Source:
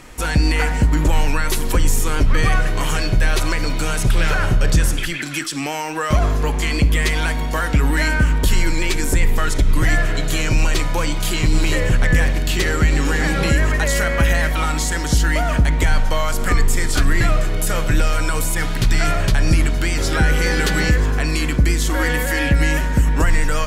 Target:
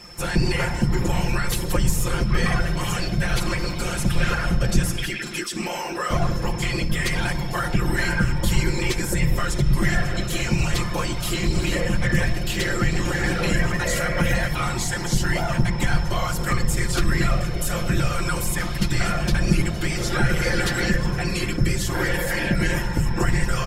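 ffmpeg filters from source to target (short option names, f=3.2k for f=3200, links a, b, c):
-af "aeval=exprs='val(0)+0.0126*sin(2*PI*5300*n/s)':c=same,afftfilt=real='hypot(re,im)*cos(2*PI*random(0))':imag='hypot(re,im)*sin(2*PI*random(1))':win_size=512:overlap=0.75,aecho=1:1:5.7:0.73"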